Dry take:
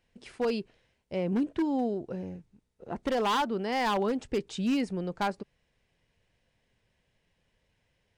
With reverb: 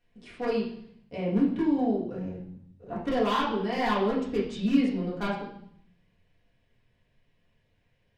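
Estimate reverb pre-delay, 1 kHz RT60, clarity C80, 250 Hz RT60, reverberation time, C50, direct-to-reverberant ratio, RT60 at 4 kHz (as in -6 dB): 4 ms, 0.65 s, 8.0 dB, 1.0 s, 0.65 s, 4.5 dB, -7.0 dB, 0.70 s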